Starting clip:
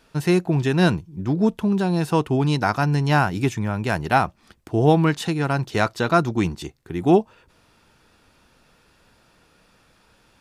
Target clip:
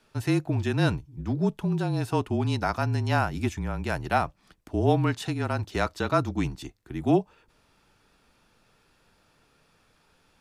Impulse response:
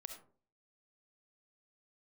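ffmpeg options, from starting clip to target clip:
-af "afreqshift=-30,volume=-6dB"

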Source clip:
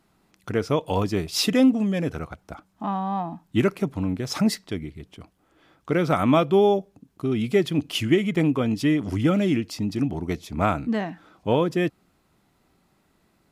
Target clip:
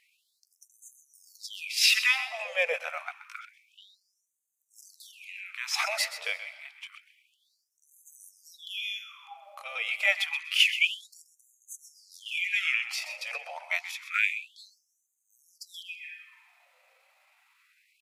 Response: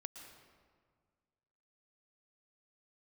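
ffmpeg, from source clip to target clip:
-filter_complex "[0:a]equalizer=frequency=2400:width=2.5:gain=13.5,atempo=0.75,asplit=2[link_01][link_02];[1:a]atrim=start_sample=2205,adelay=128[link_03];[link_02][link_03]afir=irnorm=-1:irlink=0,volume=-7dB[link_04];[link_01][link_04]amix=inputs=2:normalize=0,afftfilt=real='re*gte(b*sr/1024,470*pow(6200/470,0.5+0.5*sin(2*PI*0.28*pts/sr)))':imag='im*gte(b*sr/1024,470*pow(6200/470,0.5+0.5*sin(2*PI*0.28*pts/sr)))':win_size=1024:overlap=0.75"

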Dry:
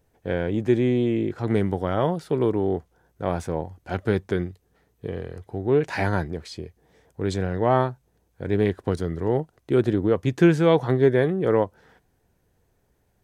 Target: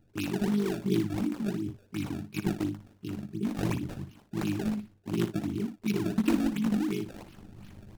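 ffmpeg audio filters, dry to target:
ffmpeg -i in.wav -filter_complex "[0:a]afftfilt=real='re*(1-between(b*sr/4096,240,1300))':imag='im*(1-between(b*sr/4096,240,1300))':win_size=4096:overlap=0.75,adynamicequalizer=threshold=0.00447:dfrequency=1500:dqfactor=1:tfrequency=1500:tqfactor=1:attack=5:release=100:ratio=0.375:range=2:mode=cutabove:tftype=bell,areverse,acompressor=mode=upward:threshold=-29dB:ratio=2.5,areverse,tremolo=f=30:d=0.947,flanger=delay=1.5:depth=7.4:regen=-62:speed=0.62:shape=sinusoidal,asplit=2[link_01][link_02];[link_02]adelay=16,volume=-5.5dB[link_03];[link_01][link_03]amix=inputs=2:normalize=0,acrossover=split=210[link_04][link_05];[link_05]acrusher=samples=41:mix=1:aa=0.000001:lfo=1:lforange=65.6:lforate=1.7[link_06];[link_04][link_06]amix=inputs=2:normalize=0,aecho=1:1:96:0.299,asetrate=73206,aresample=44100,volume=5.5dB" out.wav

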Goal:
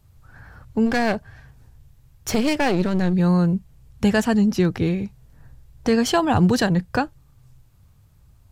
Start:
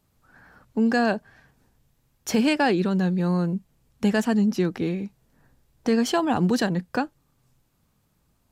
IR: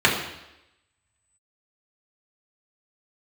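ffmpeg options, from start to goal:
-filter_complex "[0:a]lowshelf=frequency=150:width_type=q:width=1.5:gain=11.5,asplit=3[link_01][link_02][link_03];[link_01]afade=type=out:start_time=0.85:duration=0.02[link_04];[link_02]aeval=exprs='clip(val(0),-1,0.0282)':channel_layout=same,afade=type=in:start_time=0.85:duration=0.02,afade=type=out:start_time=3.12:duration=0.02[link_05];[link_03]afade=type=in:start_time=3.12:duration=0.02[link_06];[link_04][link_05][link_06]amix=inputs=3:normalize=0,volume=4.5dB"

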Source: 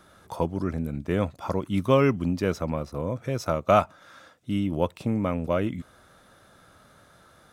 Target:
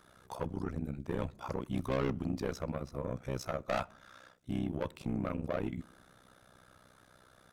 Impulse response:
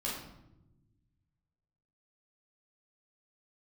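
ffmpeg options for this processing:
-filter_complex "[0:a]asoftclip=type=tanh:threshold=-22.5dB,tremolo=f=63:d=0.919,asplit=2[link_01][link_02];[1:a]atrim=start_sample=2205,asetrate=57330,aresample=44100[link_03];[link_02][link_03]afir=irnorm=-1:irlink=0,volume=-25dB[link_04];[link_01][link_04]amix=inputs=2:normalize=0,volume=-2.5dB"

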